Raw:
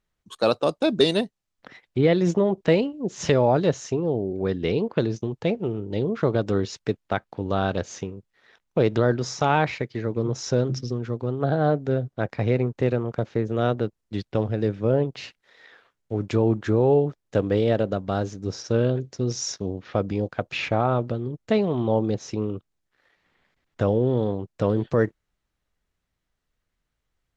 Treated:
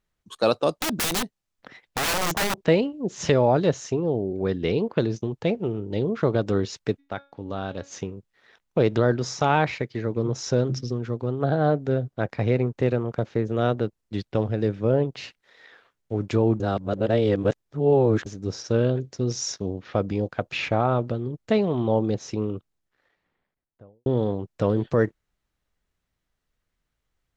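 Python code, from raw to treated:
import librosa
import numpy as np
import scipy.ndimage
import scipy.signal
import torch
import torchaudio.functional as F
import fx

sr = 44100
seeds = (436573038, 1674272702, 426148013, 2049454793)

y = fx.overflow_wrap(x, sr, gain_db=19.5, at=(0.7, 2.65))
y = fx.comb_fb(y, sr, f0_hz=280.0, decay_s=0.32, harmonics='all', damping=0.0, mix_pct=60, at=(6.98, 7.91), fade=0.02)
y = fx.studio_fade_out(y, sr, start_s=22.52, length_s=1.54)
y = fx.edit(y, sr, fx.reverse_span(start_s=16.6, length_s=1.66), tone=tone)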